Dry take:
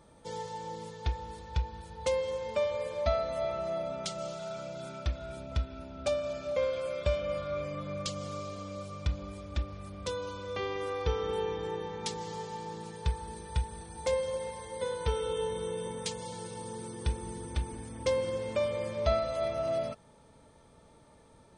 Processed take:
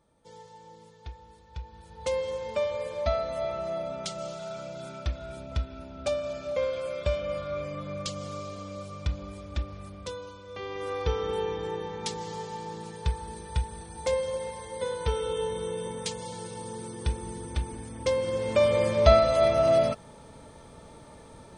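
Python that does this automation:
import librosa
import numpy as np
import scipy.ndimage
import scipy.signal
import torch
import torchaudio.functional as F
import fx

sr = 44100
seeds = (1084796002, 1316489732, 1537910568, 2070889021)

y = fx.gain(x, sr, db=fx.line((1.47, -10.0), (2.17, 1.5), (9.84, 1.5), (10.44, -6.5), (10.93, 2.5), (18.19, 2.5), (18.75, 10.0)))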